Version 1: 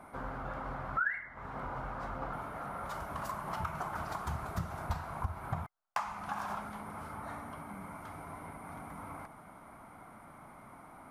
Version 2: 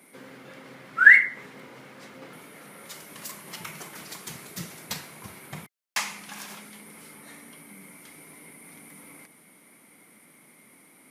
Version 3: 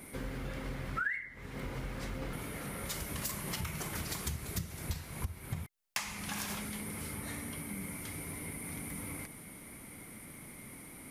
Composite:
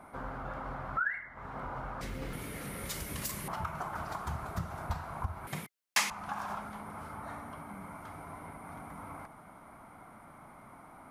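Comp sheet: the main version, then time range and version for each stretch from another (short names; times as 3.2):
1
2.01–3.48 from 3
5.47–6.1 from 2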